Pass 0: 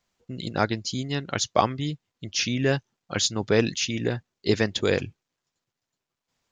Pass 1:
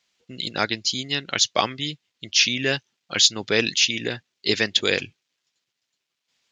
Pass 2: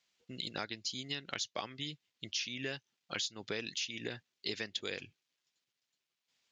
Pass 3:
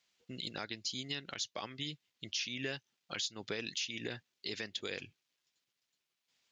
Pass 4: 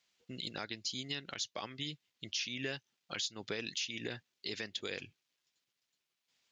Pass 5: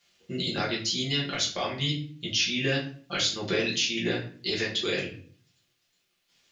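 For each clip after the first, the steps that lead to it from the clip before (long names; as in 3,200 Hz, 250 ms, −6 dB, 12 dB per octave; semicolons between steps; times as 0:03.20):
meter weighting curve D; level −1.5 dB
downward compressor 6 to 1, threshold −28 dBFS, peak gain reduction 15.5 dB; level −7.5 dB
brickwall limiter −26.5 dBFS, peak gain reduction 8 dB; level +1 dB
no processing that can be heard
convolution reverb RT60 0.50 s, pre-delay 5 ms, DRR −6.5 dB; level +5 dB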